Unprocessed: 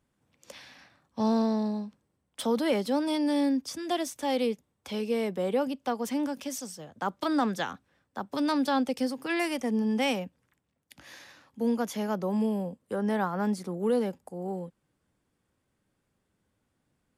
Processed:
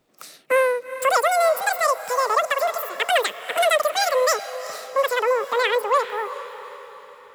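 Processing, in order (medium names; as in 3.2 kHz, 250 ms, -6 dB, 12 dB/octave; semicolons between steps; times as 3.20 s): echo that smears into a reverb 960 ms, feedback 50%, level -13 dB; speed mistake 33 rpm record played at 78 rpm; trim +8 dB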